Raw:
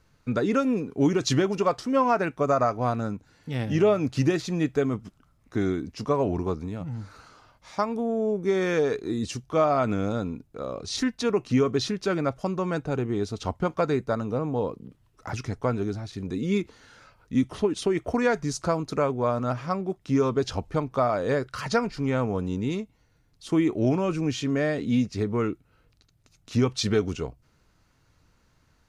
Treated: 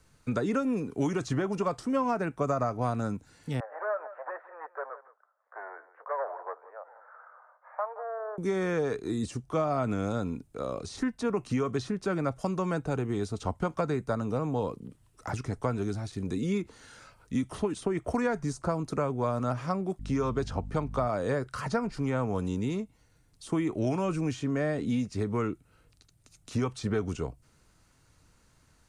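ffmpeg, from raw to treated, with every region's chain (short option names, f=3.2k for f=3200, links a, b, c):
-filter_complex "[0:a]asettb=1/sr,asplit=3[a][b][c];[a]atrim=end=3.604[d];[b]atrim=start=3.6:end=8.38,asetpts=PTS-STARTPTS,afade=t=in:d=0.004:c=qsin,afade=t=out:st=4.776:d=0.004:c=qsin,asoftclip=type=hard:threshold=-22.5dB,asuperpass=centerf=950:order=12:qfactor=0.77,aecho=1:1:170:0.141,atrim=end_sample=210798[e];[c]atrim=start=8.376[f];[d][e]acrossfade=d=0.004:c1=hsin:c2=qsin[g];[g][f]acrossfade=d=0.004:c1=qsin:c2=hsin,asettb=1/sr,asplit=3[h][i][j];[h]atrim=end=19.994[k];[i]atrim=start=19.99:end=21.07,asetpts=PTS-STARTPTS,afade=t=in:d=0.004:c=qsin,afade=t=out:st=1.076:d=0.004:c=qsin,highshelf=f=7.8k:g=-8.5,aeval=exprs='val(0)+0.0141*(sin(2*PI*50*n/s)+sin(2*PI*2*50*n/s)/2+sin(2*PI*3*50*n/s)/3+sin(2*PI*4*50*n/s)/4+sin(2*PI*5*50*n/s)/5)':c=same[l];[j]atrim=start=21.066[m];[k][l]acrossfade=d=0.004:c1=hsin:c2=qsin[n];[n][m]acrossfade=d=0.004:c1=qsin:c2=hsin,equalizer=f=8.8k:w=1.7:g=12,acrossover=split=250|620|1600[o][p][q][r];[o]acompressor=threshold=-30dB:ratio=4[s];[p]acompressor=threshold=-35dB:ratio=4[t];[q]acompressor=threshold=-31dB:ratio=4[u];[r]acompressor=threshold=-47dB:ratio=4[v];[s][t][u][v]amix=inputs=4:normalize=0"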